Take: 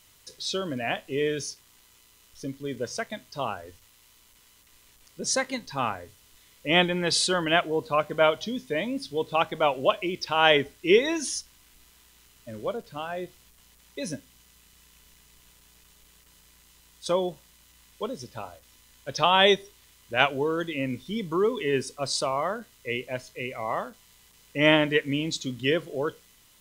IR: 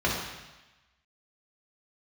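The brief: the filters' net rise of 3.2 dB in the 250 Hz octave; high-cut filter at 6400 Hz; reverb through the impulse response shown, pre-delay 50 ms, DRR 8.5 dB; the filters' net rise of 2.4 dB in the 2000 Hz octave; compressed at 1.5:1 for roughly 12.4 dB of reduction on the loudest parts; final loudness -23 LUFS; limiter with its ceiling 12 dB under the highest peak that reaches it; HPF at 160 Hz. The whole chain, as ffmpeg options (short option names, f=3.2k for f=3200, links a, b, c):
-filter_complex "[0:a]highpass=160,lowpass=6.4k,equalizer=f=250:t=o:g=5,equalizer=f=2k:t=o:g=3,acompressor=threshold=-48dB:ratio=1.5,alimiter=level_in=2.5dB:limit=-24dB:level=0:latency=1,volume=-2.5dB,asplit=2[a][b];[1:a]atrim=start_sample=2205,adelay=50[c];[b][c]afir=irnorm=-1:irlink=0,volume=-21.5dB[d];[a][d]amix=inputs=2:normalize=0,volume=15dB"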